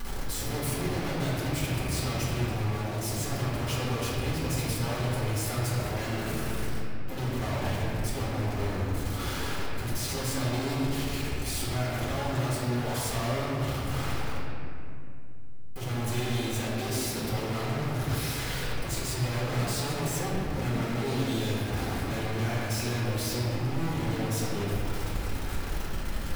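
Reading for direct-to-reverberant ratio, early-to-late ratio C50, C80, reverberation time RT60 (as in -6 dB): -8.5 dB, -2.0 dB, -0.5 dB, 2.6 s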